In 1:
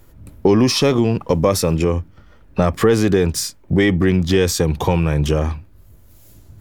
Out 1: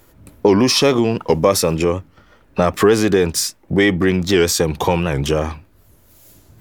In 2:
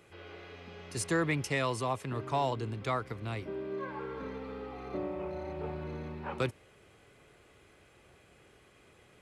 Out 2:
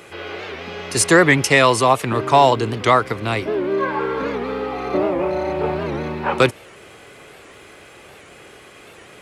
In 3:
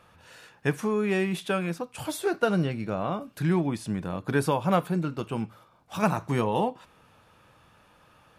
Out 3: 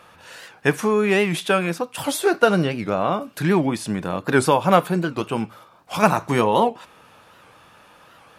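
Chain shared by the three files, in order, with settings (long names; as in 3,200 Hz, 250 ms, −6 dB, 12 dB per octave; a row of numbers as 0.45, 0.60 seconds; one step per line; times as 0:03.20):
low-shelf EQ 170 Hz −11.5 dB
wow of a warped record 78 rpm, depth 160 cents
normalise the peak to −1.5 dBFS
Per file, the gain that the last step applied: +3.5, +19.0, +9.5 decibels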